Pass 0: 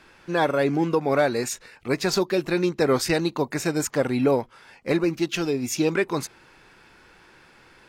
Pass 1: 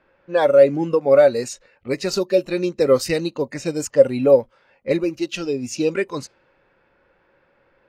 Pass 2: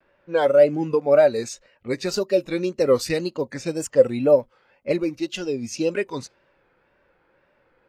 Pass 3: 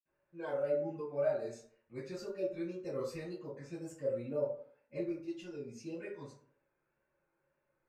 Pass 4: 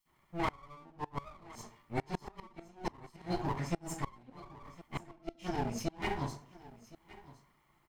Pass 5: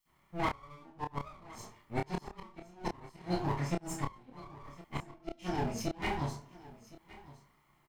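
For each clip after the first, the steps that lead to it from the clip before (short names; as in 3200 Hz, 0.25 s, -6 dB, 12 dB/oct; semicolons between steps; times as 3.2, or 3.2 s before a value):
spectral noise reduction 9 dB; low-pass opened by the level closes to 2200 Hz, open at -20 dBFS; bell 550 Hz +15 dB 0.27 oct
vibrato 1.9 Hz 99 cents; gain -2.5 dB
reverb RT60 0.55 s, pre-delay 46 ms; gain +1 dB
minimum comb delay 0.96 ms; flipped gate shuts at -35 dBFS, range -28 dB; echo 1.065 s -19 dB; gain +13 dB
doubler 28 ms -4 dB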